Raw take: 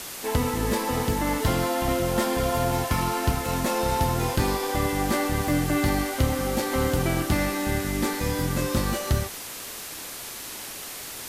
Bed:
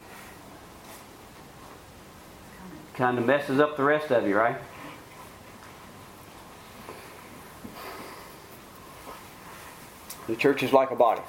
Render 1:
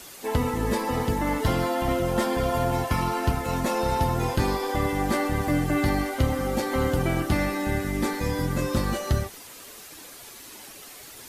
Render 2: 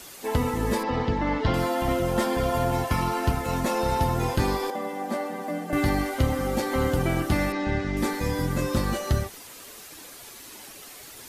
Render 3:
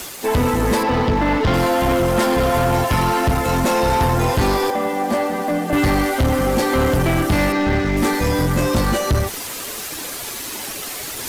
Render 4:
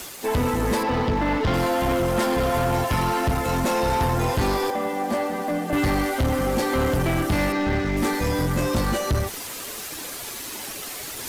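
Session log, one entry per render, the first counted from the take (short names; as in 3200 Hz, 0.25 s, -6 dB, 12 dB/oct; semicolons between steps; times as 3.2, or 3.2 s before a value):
denoiser 9 dB, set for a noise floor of -37 dBFS
0.83–1.54 LPF 4800 Hz 24 dB/oct; 4.7–5.73 rippled Chebyshev high-pass 160 Hz, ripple 9 dB; 7.52–7.97 LPF 5500 Hz 24 dB/oct
reverse; upward compressor, threshold -33 dBFS; reverse; sample leveller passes 3
gain -5 dB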